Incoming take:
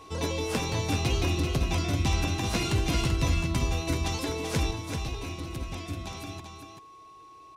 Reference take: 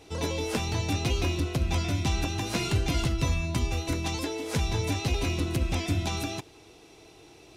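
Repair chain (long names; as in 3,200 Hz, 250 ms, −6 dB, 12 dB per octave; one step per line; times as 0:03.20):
notch filter 1,100 Hz, Q 30
echo removal 387 ms −6.5 dB
level 0 dB, from 0:04.71 +8.5 dB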